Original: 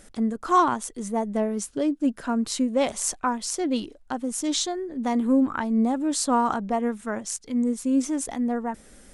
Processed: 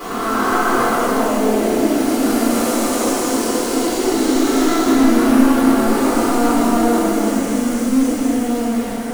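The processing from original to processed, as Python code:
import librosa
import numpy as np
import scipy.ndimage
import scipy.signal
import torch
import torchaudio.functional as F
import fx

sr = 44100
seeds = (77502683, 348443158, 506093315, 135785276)

p1 = fx.spec_blur(x, sr, span_ms=893.0)
p2 = scipy.signal.sosfilt(scipy.signal.butter(4, 210.0, 'highpass', fs=sr, output='sos'), p1)
p3 = fx.hum_notches(p2, sr, base_hz=50, count=6)
p4 = fx.leveller(p3, sr, passes=2)
p5 = (np.mod(10.0 ** (30.5 / 20.0) * p4 + 1.0, 2.0) - 1.0) / 10.0 ** (30.5 / 20.0)
p6 = p4 + (p5 * librosa.db_to_amplitude(-6.0))
p7 = fx.echo_pitch(p6, sr, ms=99, semitones=3, count=2, db_per_echo=-3.0)
p8 = p7 + 10.0 ** (-6.0 / 20.0) * np.pad(p7, (int(277 * sr / 1000.0), 0))[:len(p7)]
p9 = fx.room_shoebox(p8, sr, seeds[0], volume_m3=78.0, walls='mixed', distance_m=4.0)
y = p9 * librosa.db_to_amplitude(-8.0)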